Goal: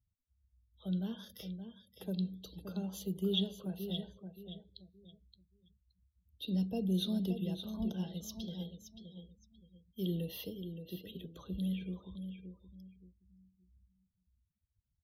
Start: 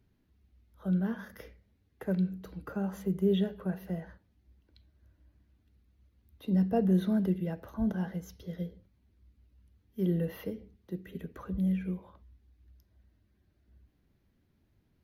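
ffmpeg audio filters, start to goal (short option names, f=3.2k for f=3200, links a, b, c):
-filter_complex "[0:a]acrossover=split=490|3000[a][b][c];[b]acompressor=threshold=-43dB:ratio=6[d];[a][d][c]amix=inputs=3:normalize=0,highshelf=f=2.5k:t=q:w=3:g=11.5,aecho=1:1:572|1144|1716|2288:0.376|0.113|0.0338|0.0101,afftdn=nr=34:nf=-54,volume=-6.5dB"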